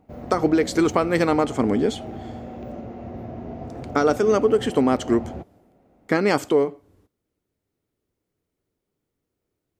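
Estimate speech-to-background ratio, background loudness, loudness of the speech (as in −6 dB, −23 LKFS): 14.0 dB, −35.5 LKFS, −21.5 LKFS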